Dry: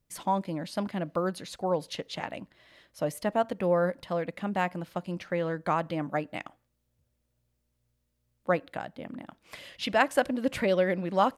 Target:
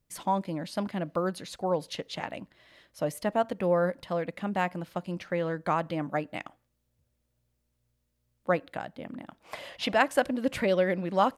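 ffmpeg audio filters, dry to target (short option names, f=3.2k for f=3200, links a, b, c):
-filter_complex "[0:a]asettb=1/sr,asplit=3[a][b][c];[a]atrim=end=9.404[d];[b]atrim=start=9.4:end=9.94,asetpts=PTS-STARTPTS,afade=t=in:d=0.004:c=qsin,afade=t=out:st=0.536:d=0.004:c=qsin,equalizer=f=780:w=0.93:g=12.5[e];[c]atrim=start=9.936[f];[d][e]acrossfade=d=0.004:c1=hsin:c2=qsin[g];[g][f]acrossfade=d=0.004:c1=qsin:c2=hsin"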